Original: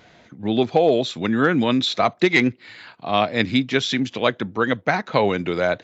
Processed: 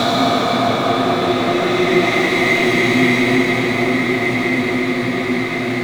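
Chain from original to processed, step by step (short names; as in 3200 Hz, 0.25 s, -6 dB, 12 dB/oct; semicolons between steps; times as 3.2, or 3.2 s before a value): dark delay 0.226 s, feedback 62%, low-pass 2900 Hz, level -5.5 dB; power-law curve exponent 0.7; Paulstretch 6.7×, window 0.50 s, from 1.95; gain -1 dB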